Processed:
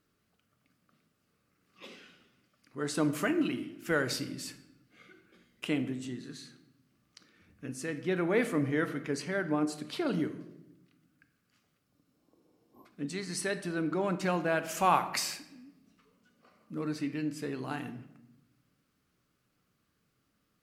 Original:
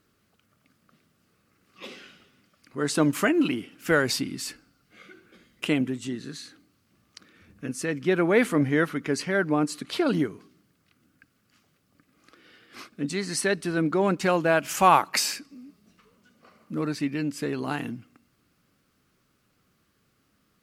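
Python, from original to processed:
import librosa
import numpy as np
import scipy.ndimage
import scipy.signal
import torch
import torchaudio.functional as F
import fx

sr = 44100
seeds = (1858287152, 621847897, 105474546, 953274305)

y = fx.spec_repair(x, sr, seeds[0], start_s=11.93, length_s=0.9, low_hz=1100.0, high_hz=12000.0, source='before')
y = fx.room_shoebox(y, sr, seeds[1], volume_m3=350.0, walls='mixed', distance_m=0.41)
y = y * 10.0 ** (-8.0 / 20.0)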